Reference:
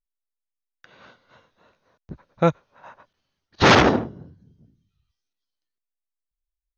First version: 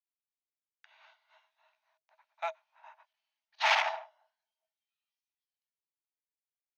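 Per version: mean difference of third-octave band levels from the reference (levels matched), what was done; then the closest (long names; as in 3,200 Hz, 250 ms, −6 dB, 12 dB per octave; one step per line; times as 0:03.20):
12.0 dB: in parallel at −11.5 dB: hard clipping −19.5 dBFS, distortion −6 dB
on the sum: Chebyshev high-pass with heavy ripple 620 Hz, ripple 9 dB
level −7 dB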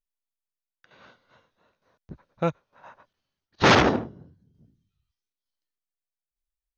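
1.0 dB: loose part that buzzes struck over −19 dBFS, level −29 dBFS
shaped tremolo saw down 1.1 Hz, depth 55%
level −2.5 dB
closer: second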